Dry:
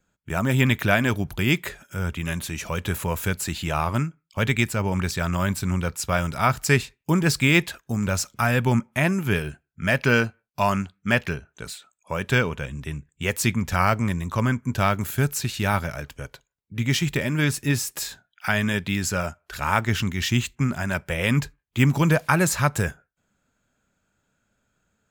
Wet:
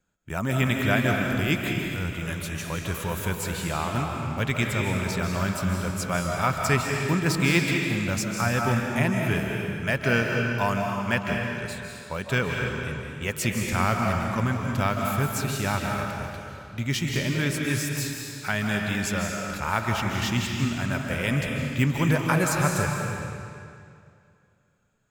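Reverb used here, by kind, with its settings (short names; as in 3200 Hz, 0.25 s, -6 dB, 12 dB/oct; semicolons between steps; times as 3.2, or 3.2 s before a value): digital reverb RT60 2.4 s, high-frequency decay 0.9×, pre-delay 0.115 s, DRR 0.5 dB; gain -4.5 dB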